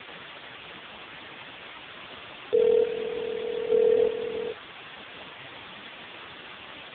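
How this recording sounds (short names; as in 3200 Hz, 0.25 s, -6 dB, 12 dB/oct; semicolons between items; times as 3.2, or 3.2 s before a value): chopped level 0.81 Hz, depth 65%, duty 30%; a quantiser's noise floor 6-bit, dither triangular; AMR-NB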